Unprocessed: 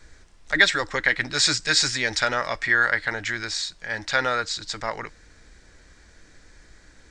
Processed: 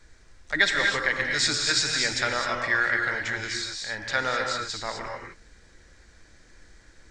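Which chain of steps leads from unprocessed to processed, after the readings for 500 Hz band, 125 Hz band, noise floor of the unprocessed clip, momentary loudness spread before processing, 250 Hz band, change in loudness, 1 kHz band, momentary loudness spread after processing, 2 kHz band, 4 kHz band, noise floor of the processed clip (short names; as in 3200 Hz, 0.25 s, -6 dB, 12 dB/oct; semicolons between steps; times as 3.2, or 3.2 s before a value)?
-2.5 dB, -2.0 dB, -53 dBFS, 12 LU, -2.5 dB, -2.5 dB, -2.0 dB, 10 LU, -2.0 dB, -2.5 dB, -56 dBFS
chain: non-linear reverb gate 0.28 s rising, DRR 1.5 dB; gain -4.5 dB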